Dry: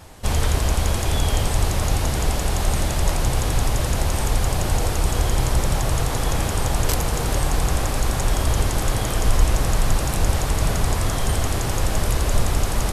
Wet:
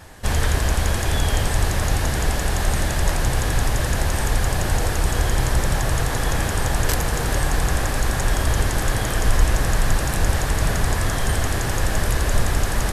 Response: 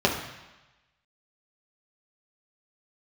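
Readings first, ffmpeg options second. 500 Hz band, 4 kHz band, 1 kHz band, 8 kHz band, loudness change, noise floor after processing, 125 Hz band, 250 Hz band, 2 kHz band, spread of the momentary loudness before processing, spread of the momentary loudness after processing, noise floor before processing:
0.0 dB, 0.0 dB, +0.5 dB, 0.0 dB, +0.5 dB, −24 dBFS, 0.0 dB, 0.0 dB, +5.0 dB, 2 LU, 2 LU, −24 dBFS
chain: -af "equalizer=frequency=1700:width=4.4:gain=8.5"

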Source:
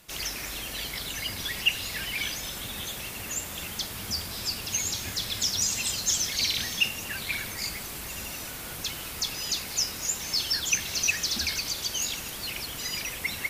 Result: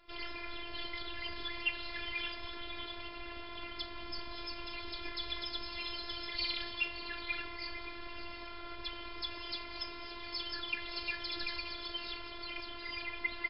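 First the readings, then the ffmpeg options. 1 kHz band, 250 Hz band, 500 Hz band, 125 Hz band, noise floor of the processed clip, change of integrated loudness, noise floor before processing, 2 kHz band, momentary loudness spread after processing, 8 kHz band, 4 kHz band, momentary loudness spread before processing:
−2.5 dB, −5.5 dB, −4.5 dB, −15.0 dB, −46 dBFS, −11.0 dB, −38 dBFS, −7.0 dB, 8 LU, below −40 dB, −10.0 dB, 9 LU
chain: -filter_complex "[0:a]aecho=1:1:2:0.5,asplit=2[link_01][link_02];[link_02]aecho=0:1:572:0.237[link_03];[link_01][link_03]amix=inputs=2:normalize=0,afftfilt=real='hypot(re,im)*cos(PI*b)':imag='0':win_size=512:overlap=0.75,aemphasis=mode=reproduction:type=75kf" -ar 12000 -c:a libmp3lame -b:a 40k

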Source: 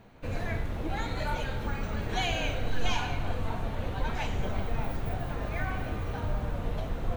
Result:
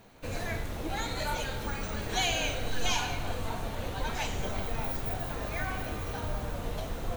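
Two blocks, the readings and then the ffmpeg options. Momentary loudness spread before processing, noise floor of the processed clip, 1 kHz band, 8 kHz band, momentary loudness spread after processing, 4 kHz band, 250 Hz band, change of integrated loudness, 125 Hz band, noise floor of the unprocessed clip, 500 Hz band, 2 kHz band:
4 LU, −38 dBFS, 0.0 dB, +9.5 dB, 7 LU, +3.5 dB, −2.0 dB, 0.0 dB, −4.0 dB, −36 dBFS, 0.0 dB, +1.0 dB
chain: -af "bass=frequency=250:gain=-4,treble=frequency=4000:gain=11"

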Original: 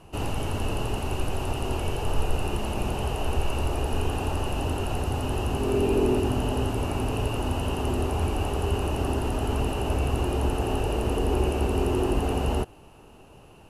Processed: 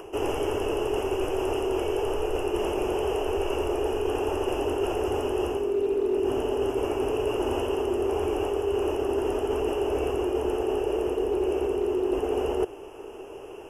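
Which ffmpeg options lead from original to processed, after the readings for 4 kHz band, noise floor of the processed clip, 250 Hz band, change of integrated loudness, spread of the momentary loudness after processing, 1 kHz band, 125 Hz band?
−2.5 dB, −41 dBFS, −0.5 dB, +0.5 dB, 2 LU, −1.0 dB, −12.0 dB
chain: -filter_complex "[0:a]lowshelf=frequency=270:width_type=q:width=1.5:gain=-8,acrossover=split=120[link_01][link_02];[link_02]acompressor=mode=upward:threshold=-48dB:ratio=2.5[link_03];[link_01][link_03]amix=inputs=2:normalize=0,asuperstop=centerf=4100:order=20:qfactor=2.7,asoftclip=type=hard:threshold=-17.5dB,equalizer=frequency=160:width_type=o:width=0.67:gain=-5,equalizer=frequency=400:width_type=o:width=0.67:gain=10,equalizer=frequency=10000:width_type=o:width=0.67:gain=-4,areverse,acompressor=threshold=-28dB:ratio=10,areverse,volume=5dB"

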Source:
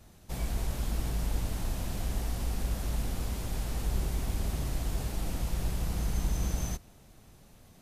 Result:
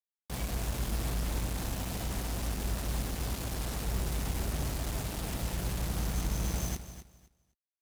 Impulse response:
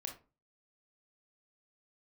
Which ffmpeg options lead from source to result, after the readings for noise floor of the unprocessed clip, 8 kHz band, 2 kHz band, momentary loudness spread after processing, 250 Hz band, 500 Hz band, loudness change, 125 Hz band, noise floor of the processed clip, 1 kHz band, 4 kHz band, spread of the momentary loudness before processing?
−57 dBFS, +2.5 dB, +3.0 dB, 3 LU, +0.5 dB, +1.5 dB, −0.5 dB, −1.0 dB, below −85 dBFS, +2.0 dB, +3.0 dB, 3 LU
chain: -af "acrusher=bits=5:mix=0:aa=0.5,highpass=53,aecho=1:1:256|512|768:0.237|0.0498|0.0105"

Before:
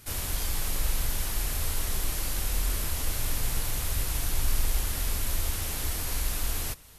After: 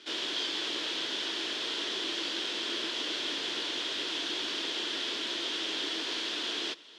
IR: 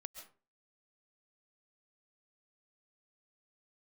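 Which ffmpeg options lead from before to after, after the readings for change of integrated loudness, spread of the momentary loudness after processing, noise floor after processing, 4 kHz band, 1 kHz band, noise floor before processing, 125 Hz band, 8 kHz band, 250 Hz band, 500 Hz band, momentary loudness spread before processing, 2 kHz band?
−1.0 dB, 1 LU, −37 dBFS, +8.5 dB, −1.0 dB, −34 dBFS, below −30 dB, −11.5 dB, +2.5 dB, +3.0 dB, 1 LU, +3.0 dB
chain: -af "highpass=frequency=310:width=0.5412,highpass=frequency=310:width=1.3066,equalizer=frequency=330:width_type=q:width=4:gain=7,equalizer=frequency=540:width_type=q:width=4:gain=-5,equalizer=frequency=790:width_type=q:width=4:gain=-9,equalizer=frequency=1200:width_type=q:width=4:gain=-6,equalizer=frequency=2200:width_type=q:width=4:gain=-4,equalizer=frequency=3300:width_type=q:width=4:gain=10,lowpass=frequency=4800:width=0.5412,lowpass=frequency=4800:width=1.3066,volume=4.5dB"

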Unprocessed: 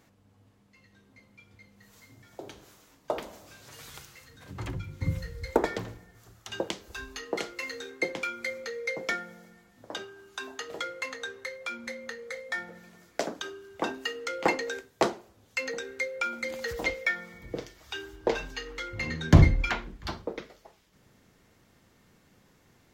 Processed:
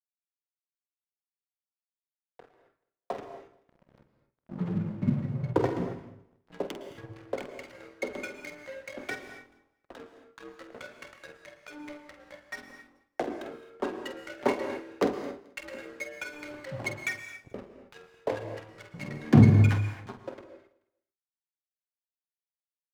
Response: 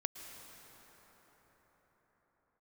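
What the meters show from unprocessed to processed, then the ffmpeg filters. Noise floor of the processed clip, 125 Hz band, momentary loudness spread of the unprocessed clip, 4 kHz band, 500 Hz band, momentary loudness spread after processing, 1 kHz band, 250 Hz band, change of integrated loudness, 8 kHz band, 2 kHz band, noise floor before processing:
below −85 dBFS, +2.5 dB, 18 LU, −9.5 dB, −1.0 dB, 19 LU, −3.5 dB, +4.5 dB, +1.5 dB, −7.5 dB, −6.5 dB, −63 dBFS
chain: -filter_complex "[0:a]bandreject=frequency=50:width_type=h:width=6,bandreject=frequency=100:width_type=h:width=6,bandreject=frequency=150:width_type=h:width=6,bandreject=frequency=200:width_type=h:width=6,bandreject=frequency=250:width_type=h:width=6,bandreject=frequency=300:width_type=h:width=6,bandreject=frequency=350:width_type=h:width=6,acrossover=split=310|1700[link_01][link_02][link_03];[link_01]dynaudnorm=framelen=160:gausssize=31:maxgain=12dB[link_04];[link_04][link_02][link_03]amix=inputs=3:normalize=0,flanger=delay=0:depth=8.6:regen=-21:speed=0.53:shape=triangular,adynamicsmooth=sensitivity=4:basefreq=780,afreqshift=65,aeval=exprs='sgn(val(0))*max(abs(val(0))-0.0075,0)':channel_layout=same,asplit=2[link_05][link_06];[link_06]adelay=48,volume=-10dB[link_07];[link_05][link_07]amix=inputs=2:normalize=0,aecho=1:1:216|432:0.0794|0.0207[link_08];[1:a]atrim=start_sample=2205,afade=type=out:start_time=0.33:duration=0.01,atrim=end_sample=14994[link_09];[link_08][link_09]afir=irnorm=-1:irlink=0,volume=1dB"

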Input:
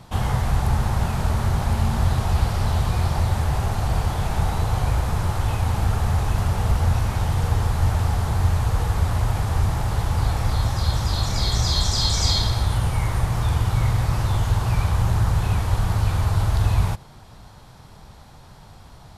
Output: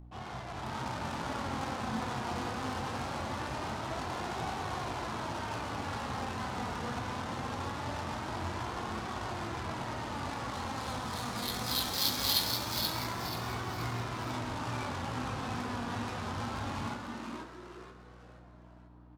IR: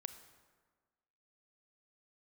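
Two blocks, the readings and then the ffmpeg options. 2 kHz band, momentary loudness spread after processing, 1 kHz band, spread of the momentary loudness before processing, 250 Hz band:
−6.0 dB, 9 LU, −7.0 dB, 3 LU, −7.5 dB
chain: -filter_complex "[0:a]highpass=180,highshelf=frequency=2800:gain=-9.5,dynaudnorm=framelen=100:gausssize=11:maxgain=5dB,flanger=delay=15:depth=7.9:speed=2.3,adynamicsmooth=sensitivity=4:basefreq=710,asplit=5[link_01][link_02][link_03][link_04][link_05];[link_02]adelay=481,afreqshift=130,volume=-5dB[link_06];[link_03]adelay=962,afreqshift=260,volume=-13.9dB[link_07];[link_04]adelay=1443,afreqshift=390,volume=-22.7dB[link_08];[link_05]adelay=1924,afreqshift=520,volume=-31.6dB[link_09];[link_01][link_06][link_07][link_08][link_09]amix=inputs=5:normalize=0,aeval=exprs='val(0)+0.0158*(sin(2*PI*60*n/s)+sin(2*PI*2*60*n/s)/2+sin(2*PI*3*60*n/s)/3+sin(2*PI*4*60*n/s)/4+sin(2*PI*5*60*n/s)/5)':channel_layout=same,flanger=delay=2.6:depth=1.6:regen=63:speed=0.22:shape=triangular,crystalizer=i=7:c=0[link_10];[1:a]atrim=start_sample=2205[link_11];[link_10][link_11]afir=irnorm=-1:irlink=0,volume=-4dB"

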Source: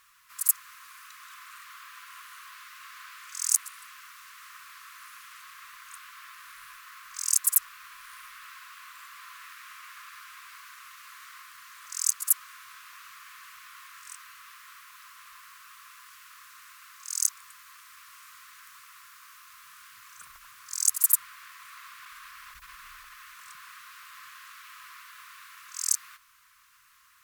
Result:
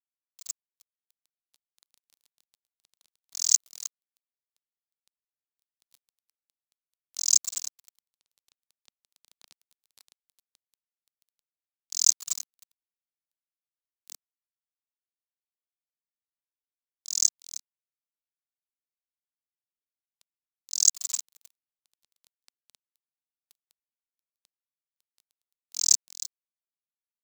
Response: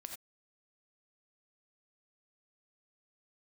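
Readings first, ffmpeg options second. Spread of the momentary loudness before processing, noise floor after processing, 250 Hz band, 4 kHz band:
23 LU, below −85 dBFS, can't be measured, +7.5 dB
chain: -filter_complex "[0:a]asplit=2[link_01][link_02];[link_02]adelay=311,lowpass=frequency=3900:poles=1,volume=-7dB,asplit=2[link_03][link_04];[link_04]adelay=311,lowpass=frequency=3900:poles=1,volume=0.27,asplit=2[link_05][link_06];[link_06]adelay=311,lowpass=frequency=3900:poles=1,volume=0.27[link_07];[link_01][link_03][link_05][link_07]amix=inputs=4:normalize=0,aresample=16000,aresample=44100,aeval=exprs='sgn(val(0))*max(abs(val(0))-0.0141,0)':channel_layout=same,highshelf=frequency=5300:gain=10.5,dynaudnorm=framelen=230:gausssize=13:maxgain=15dB,equalizer=frequency=250:width_type=o:width=0.67:gain=-9,equalizer=frequency=1600:width_type=o:width=0.67:gain=-6,equalizer=frequency=4000:width_type=o:width=0.67:gain=7,volume=-2dB"

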